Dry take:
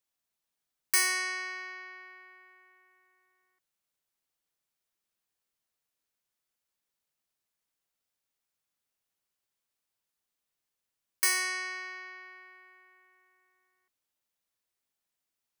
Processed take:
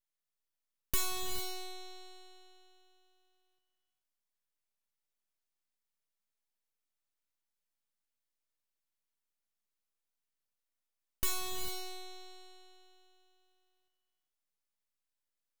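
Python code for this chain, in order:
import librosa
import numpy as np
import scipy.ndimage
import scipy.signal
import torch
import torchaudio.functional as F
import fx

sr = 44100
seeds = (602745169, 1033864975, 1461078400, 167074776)

y = scipy.signal.sosfilt(scipy.signal.butter(4, 410.0, 'highpass', fs=sr, output='sos'), x)
y = np.abs(y)
y = fx.rev_gated(y, sr, seeds[0], gate_ms=470, shape='rising', drr_db=6.5)
y = y * 10.0 ** (-4.0 / 20.0)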